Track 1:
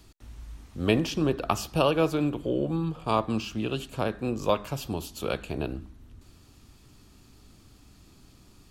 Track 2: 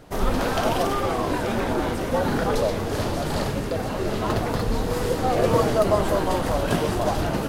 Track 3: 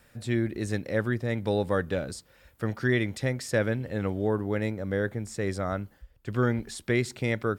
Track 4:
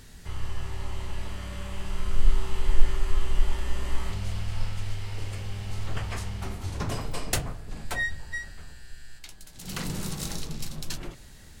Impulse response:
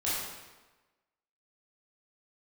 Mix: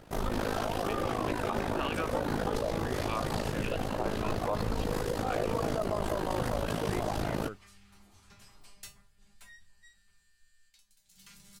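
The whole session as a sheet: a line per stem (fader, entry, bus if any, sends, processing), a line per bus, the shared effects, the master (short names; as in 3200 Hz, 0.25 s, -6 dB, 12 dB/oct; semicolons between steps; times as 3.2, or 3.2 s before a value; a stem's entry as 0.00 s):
+2.5 dB, 0.00 s, no send, wah 1.7 Hz 750–2100 Hz, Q 2.3
-2.5 dB, 0.00 s, no send, AM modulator 53 Hz, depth 75%
-15.0 dB, 0.00 s, no send, dry
-1.0 dB, 1.50 s, no send, passive tone stack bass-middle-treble 5-5-5; resonator 200 Hz, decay 0.23 s, harmonics all, mix 90%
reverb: off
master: limiter -21 dBFS, peak gain reduction 11 dB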